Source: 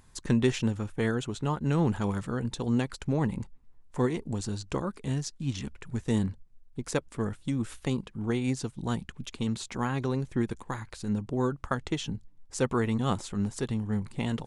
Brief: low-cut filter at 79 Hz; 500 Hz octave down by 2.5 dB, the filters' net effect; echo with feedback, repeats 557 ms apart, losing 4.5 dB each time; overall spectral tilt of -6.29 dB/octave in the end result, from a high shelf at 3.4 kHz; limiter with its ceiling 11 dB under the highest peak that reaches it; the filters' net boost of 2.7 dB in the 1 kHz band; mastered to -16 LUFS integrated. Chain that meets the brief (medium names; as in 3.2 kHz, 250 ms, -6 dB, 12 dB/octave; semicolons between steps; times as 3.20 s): high-pass 79 Hz; peaking EQ 500 Hz -4 dB; peaking EQ 1 kHz +5 dB; treble shelf 3.4 kHz -7 dB; peak limiter -22 dBFS; feedback delay 557 ms, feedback 60%, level -4.5 dB; trim +16 dB